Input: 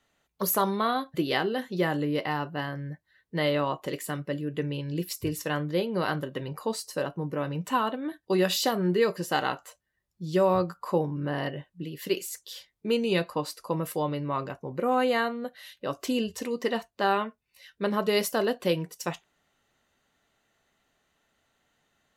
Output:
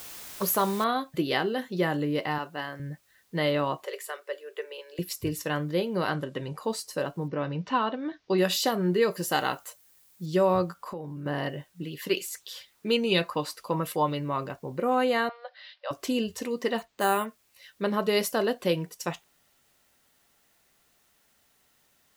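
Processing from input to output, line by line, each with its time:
0.84 noise floor step -43 dB -68 dB
2.38–2.8 HPF 470 Hz 6 dB/oct
3.84–4.99 rippled Chebyshev high-pass 380 Hz, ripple 3 dB
6.09–6.62 LPF 9700 Hz
7.28–8.38 steep low-pass 5800 Hz 48 dB/oct
9.11–10.26 high shelf 7400 Hz +10.5 dB
10.77–11.26 compressor 4:1, threshold -35 dBFS
11.82–14.22 LFO bell 4.1 Hz 930–3900 Hz +9 dB
15.29–15.91 Chebyshev band-pass 540–5000 Hz, order 5
16.78–17.26 careless resampling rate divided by 4×, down filtered, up hold

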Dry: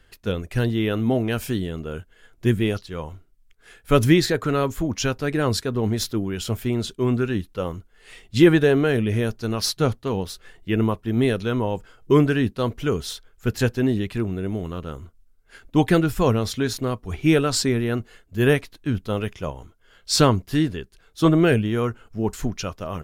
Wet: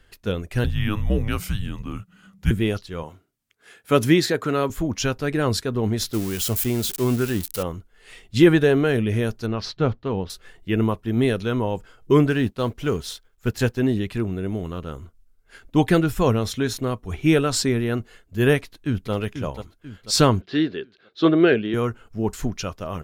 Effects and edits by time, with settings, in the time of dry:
0.64–2.51 frequency shift -200 Hz
3.03–4.7 HPF 150 Hz
6.13–7.63 switching spikes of -20 dBFS
9.46–10.3 air absorption 210 m
12.3–13.79 G.711 law mismatch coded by A
16.1–17.59 notch 4700 Hz
18.57–19.12 echo throw 0.49 s, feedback 45%, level -8.5 dB
20.41–21.74 speaker cabinet 230–4400 Hz, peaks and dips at 380 Hz +6 dB, 940 Hz -5 dB, 1600 Hz +3 dB, 4000 Hz +6 dB

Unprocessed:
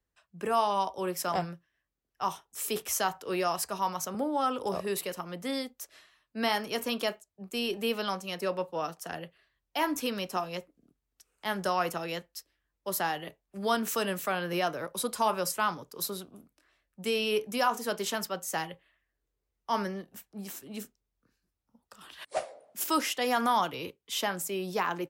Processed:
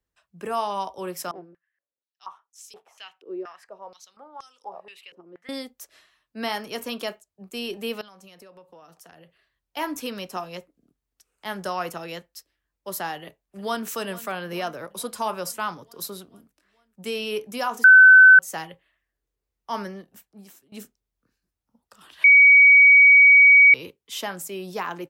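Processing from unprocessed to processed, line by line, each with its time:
1.31–5.49 stepped band-pass 4.2 Hz 360–6000 Hz
8.01–9.77 compressor 12:1, threshold -45 dBFS
13.14–13.87 echo throw 0.44 s, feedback 65%, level -17.5 dB
17.84–18.39 bleep 1520 Hz -6.5 dBFS
19.7–20.72 fade out equal-power, to -20.5 dB
22.24–23.74 bleep 2260 Hz -8.5 dBFS

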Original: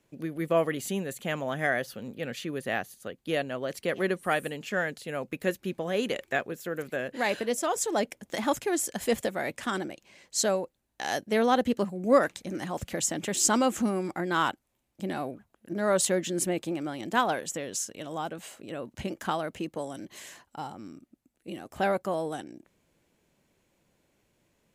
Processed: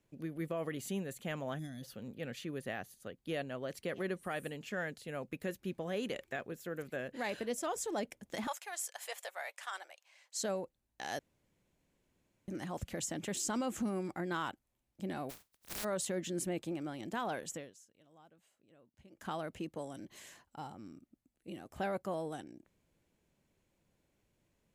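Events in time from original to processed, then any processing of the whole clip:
1.59–1.83 spectral gain 330–3300 Hz -23 dB
8.47–10.43 inverse Chebyshev high-pass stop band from 260 Hz, stop band 50 dB
11.19–12.48 room tone
15.29–15.83 spectral contrast lowered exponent 0.11
17.54–19.31 dip -20 dB, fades 0.20 s
whole clip: low shelf 140 Hz +7.5 dB; limiter -19.5 dBFS; gain -8.5 dB

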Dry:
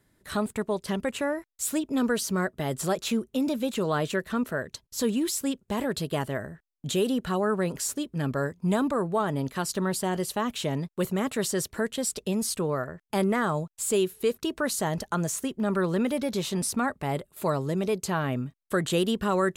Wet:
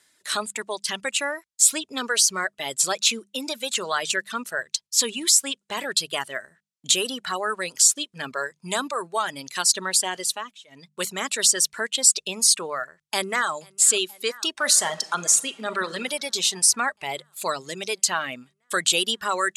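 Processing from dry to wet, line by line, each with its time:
10.21–11.02 dip -19.5 dB, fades 0.35 s
12.99–13.5 echo throw 0.48 s, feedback 80%, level -17 dB
14.51–15.96 reverb throw, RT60 1.1 s, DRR 6 dB
whole clip: weighting filter ITU-R 468; reverb removal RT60 1.9 s; notches 50/100/150/200 Hz; gain +3.5 dB

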